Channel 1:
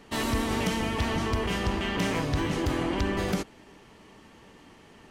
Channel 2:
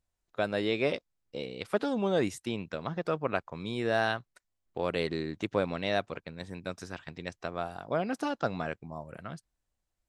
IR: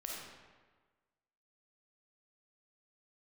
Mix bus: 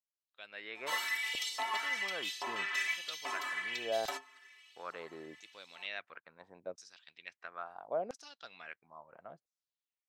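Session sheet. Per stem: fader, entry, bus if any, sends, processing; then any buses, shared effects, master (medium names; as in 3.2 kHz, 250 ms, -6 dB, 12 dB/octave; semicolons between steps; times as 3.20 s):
+1.5 dB, 0.75 s, no send, comb 3 ms, depth 91%; LFO high-pass saw up 1.2 Hz 780–4700 Hz; inharmonic resonator 130 Hz, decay 0.22 s, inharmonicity 0.008
-10.5 dB, 0.00 s, no send, level rider gain up to 8.5 dB; LFO band-pass saw down 0.74 Hz 500–6600 Hz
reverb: none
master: none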